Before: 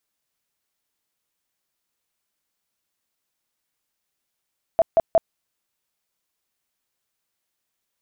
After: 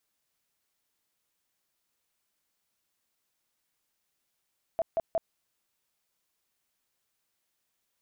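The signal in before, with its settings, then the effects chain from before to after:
tone bursts 662 Hz, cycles 19, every 0.18 s, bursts 3, -11.5 dBFS
limiter -23.5 dBFS

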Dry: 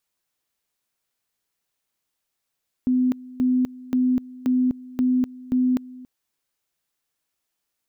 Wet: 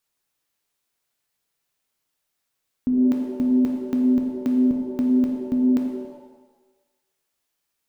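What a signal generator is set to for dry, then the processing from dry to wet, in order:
two-level tone 253 Hz -16.5 dBFS, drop 20.5 dB, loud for 0.25 s, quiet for 0.28 s, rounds 6
shimmer reverb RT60 1.1 s, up +7 st, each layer -8 dB, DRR 2.5 dB

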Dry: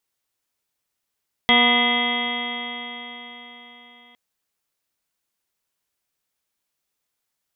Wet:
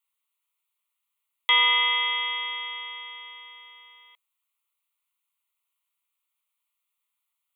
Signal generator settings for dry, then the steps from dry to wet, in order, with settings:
stretched partials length 2.66 s, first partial 239 Hz, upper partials -5/-0.5/-2/-5.5/-18.5/-15/5/-12/-10/-10/4.5/-9.5 dB, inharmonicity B 0.0021, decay 4.27 s, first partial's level -21 dB
HPF 730 Hz 24 dB/oct; fixed phaser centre 1100 Hz, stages 8

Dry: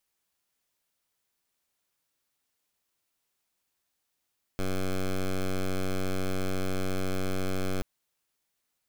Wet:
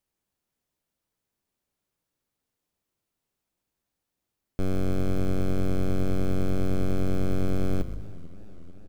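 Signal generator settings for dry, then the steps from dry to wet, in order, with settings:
pulse 94.1 Hz, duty 10% -28 dBFS 3.23 s
tilt shelf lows +6.5 dB, about 660 Hz; on a send: frequency-shifting echo 0.127 s, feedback 40%, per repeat -52 Hz, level -13.5 dB; on the sum: warbling echo 0.44 s, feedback 72%, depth 158 cents, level -22 dB

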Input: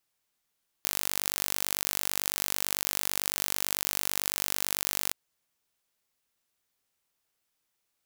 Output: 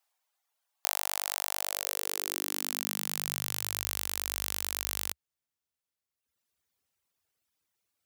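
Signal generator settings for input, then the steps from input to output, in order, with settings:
pulse train 49/s, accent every 0, -2 dBFS 4.28 s
high-pass sweep 750 Hz -> 71 Hz, 1.53–4.08; reverb removal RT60 1.4 s

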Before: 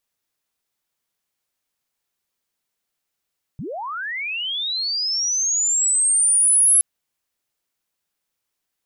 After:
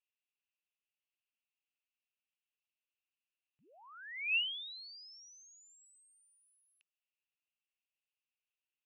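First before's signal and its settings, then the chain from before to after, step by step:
chirp linear 110 Hz -> 11000 Hz -27.5 dBFS -> -11 dBFS 3.22 s
compressor, threshold -25 dBFS; band-pass 2700 Hz, Q 9.8; air absorption 100 m

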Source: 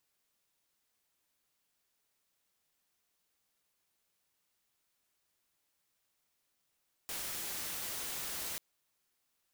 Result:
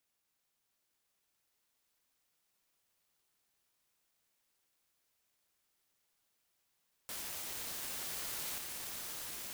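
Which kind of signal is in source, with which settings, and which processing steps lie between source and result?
noise white, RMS -40 dBFS 1.49 s
on a send: swelling echo 0.116 s, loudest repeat 8, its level -11 dB; on the sum: ring modulator with a swept carrier 1300 Hz, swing 85%, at 0.77 Hz

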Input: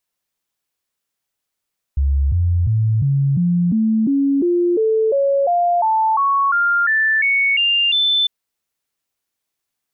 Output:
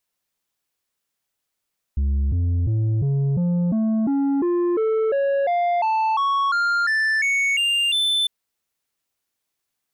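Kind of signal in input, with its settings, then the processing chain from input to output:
stepped sine 69.4 Hz up, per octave 3, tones 18, 0.35 s, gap 0.00 s -13 dBFS
soft clip -18 dBFS

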